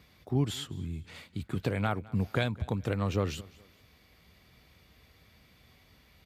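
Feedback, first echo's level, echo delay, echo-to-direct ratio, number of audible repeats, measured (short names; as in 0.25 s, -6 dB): 36%, -22.5 dB, 0.21 s, -22.0 dB, 2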